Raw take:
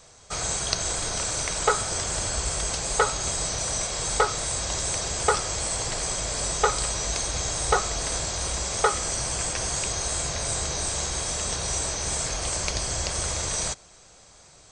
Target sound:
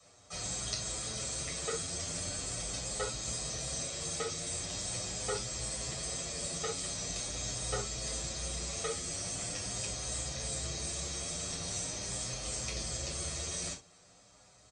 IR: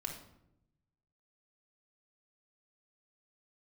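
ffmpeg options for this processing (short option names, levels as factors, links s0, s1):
-filter_complex "[1:a]atrim=start_sample=2205,afade=t=out:st=0.17:d=0.01,atrim=end_sample=7938,asetrate=74970,aresample=44100[s0];[0:a][s0]afir=irnorm=-1:irlink=0,acrossover=split=120|500|1900[s1][s2][s3][s4];[s1]asoftclip=type=tanh:threshold=0.0211[s5];[s3]acompressor=threshold=0.00355:ratio=6[s6];[s5][s2][s6][s4]amix=inputs=4:normalize=0,highpass=63,asplit=2[s7][s8];[s8]adelay=8.1,afreqshift=0.43[s9];[s7][s9]amix=inputs=2:normalize=1"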